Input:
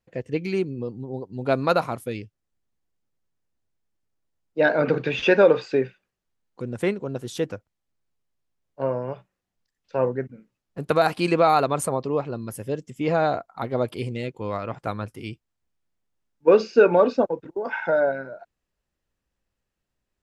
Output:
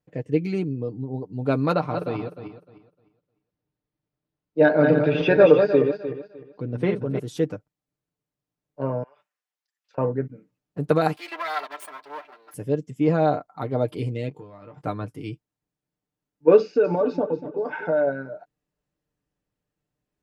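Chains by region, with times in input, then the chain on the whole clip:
0:01.72–0:07.19: feedback delay that plays each chunk backwards 152 ms, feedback 47%, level −5.5 dB + Savitzky-Golay smoothing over 15 samples
0:09.03–0:09.98: high-pass filter 1,200 Hz + downward compressor 12 to 1, threshold −50 dBFS
0:11.16–0:12.54: lower of the sound and its delayed copy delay 3 ms + high-pass filter 1,100 Hz + parametric band 7,300 Hz −9 dB 1.1 octaves
0:14.29–0:14.82: downward compressor 20 to 1, threshold −38 dBFS + double-tracking delay 21 ms −8 dB
0:16.60–0:18.07: downward compressor 3 to 1, threshold −20 dBFS + high-shelf EQ 7,700 Hz −10 dB + repeating echo 241 ms, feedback 33%, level −13.5 dB
whole clip: high-pass filter 130 Hz 6 dB per octave; tilt shelving filter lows +5.5 dB, about 660 Hz; comb filter 6.7 ms, depth 59%; level −1 dB

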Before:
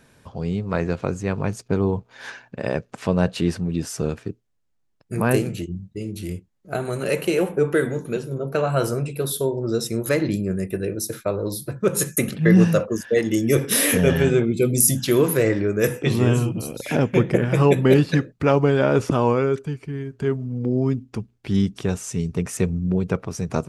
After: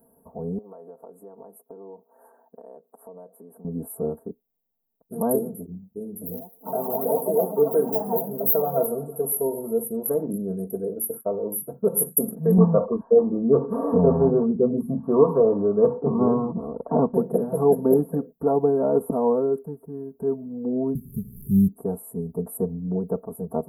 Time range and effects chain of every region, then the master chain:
0:00.58–0:03.65: high-pass filter 350 Hz + downward compressor 5 to 1, threshold −38 dBFS
0:06.09–0:09.83: feedback echo with a high-pass in the loop 120 ms, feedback 80%, high-pass 490 Hz, level −17 dB + delay with pitch and tempo change per echo 123 ms, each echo +6 semitones, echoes 2, each echo −6 dB
0:12.58–0:17.14: low-pass with resonance 1,100 Hz, resonance Q 7.2 + low-shelf EQ 140 Hz +12 dB
0:20.95–0:21.68: linear delta modulator 64 kbit/s, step −33.5 dBFS + Chebyshev band-stop filter 400–4,100 Hz, order 5 + low shelf with overshoot 200 Hz +12.5 dB, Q 3
whole clip: inverse Chebyshev band-stop filter 2,300–5,800 Hz, stop band 70 dB; spectral tilt +3.5 dB per octave; comb filter 4.4 ms, depth 90%

